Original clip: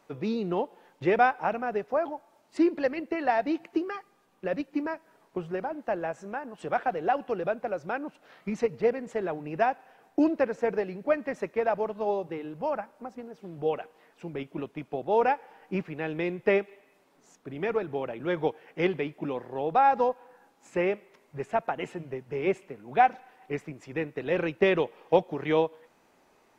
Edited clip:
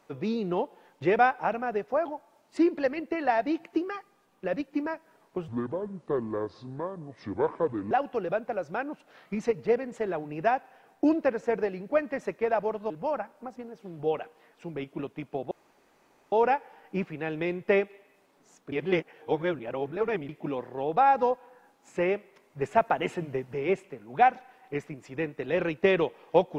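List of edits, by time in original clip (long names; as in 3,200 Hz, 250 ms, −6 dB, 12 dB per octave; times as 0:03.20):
0:05.48–0:07.06: play speed 65%
0:12.05–0:12.49: remove
0:15.10: splice in room tone 0.81 s
0:17.50–0:19.07: reverse
0:21.39–0:22.32: clip gain +4.5 dB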